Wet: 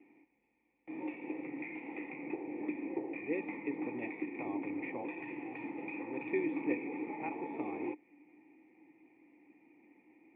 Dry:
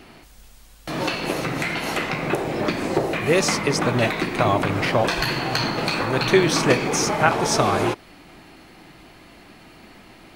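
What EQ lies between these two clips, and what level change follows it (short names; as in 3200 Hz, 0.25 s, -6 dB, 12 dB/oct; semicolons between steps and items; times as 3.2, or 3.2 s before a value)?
vocal tract filter e; vowel filter u; HPF 62 Hz; +9.5 dB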